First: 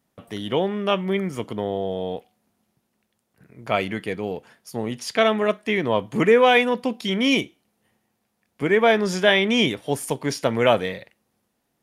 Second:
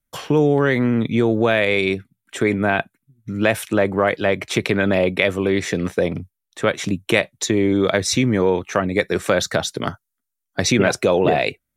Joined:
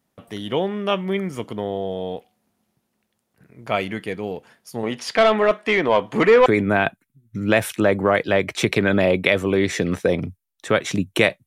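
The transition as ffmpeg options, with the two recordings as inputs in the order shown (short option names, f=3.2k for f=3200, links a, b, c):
-filter_complex "[0:a]asettb=1/sr,asplit=3[a][b][c];[a]atrim=end=4.834[d];[b]atrim=start=4.83:end=6.46,asetpts=PTS-STARTPTS,afade=t=in:d=0.004:c=qsin,afade=t=out:st=1.626:d=0.004:c=qsin,asplit=2[e][f];[f]highpass=f=720:p=1,volume=16dB,asoftclip=type=tanh:threshold=-4.5dB[g];[e][g]amix=inputs=2:normalize=0,lowpass=f=1.9k:p=1,volume=-6dB[h];[c]atrim=start=6.456[i];[d][h]acrossfade=d=0.004:c1=hsin:c2=qsin[j];[j][i]acrossfade=d=0.004:c1=qsin:c2=hsin,apad=whole_dur=11.46,atrim=end=11.46,atrim=end=6.462[k];[1:a]atrim=start=2.388:end=7.39[l];[k][l]acrossfade=d=0.004:c1=hsin:c2=hsin"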